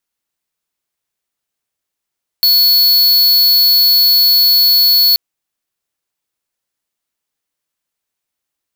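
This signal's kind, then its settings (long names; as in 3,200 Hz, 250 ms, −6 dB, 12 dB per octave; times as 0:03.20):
tone square 4,400 Hz −9.5 dBFS 2.73 s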